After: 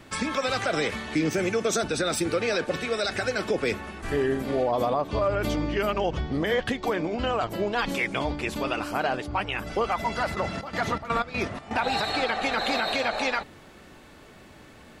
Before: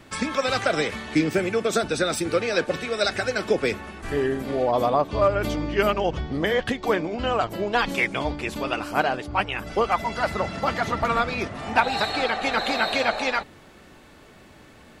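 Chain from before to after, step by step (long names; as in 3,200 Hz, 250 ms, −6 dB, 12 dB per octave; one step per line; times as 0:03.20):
0:01.25–0:01.84: parametric band 6,100 Hz +9.5 dB 0.28 octaves
brickwall limiter −16 dBFS, peak gain reduction 9 dB
0:10.34–0:11.84: gate pattern "xx.x.xx." 123 BPM −12 dB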